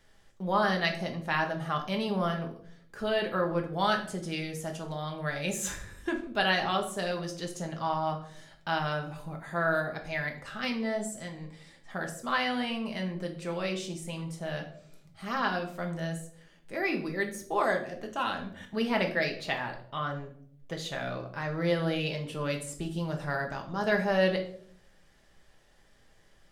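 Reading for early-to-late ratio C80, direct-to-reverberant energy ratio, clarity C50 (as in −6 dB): 14.0 dB, 2.0 dB, 10.0 dB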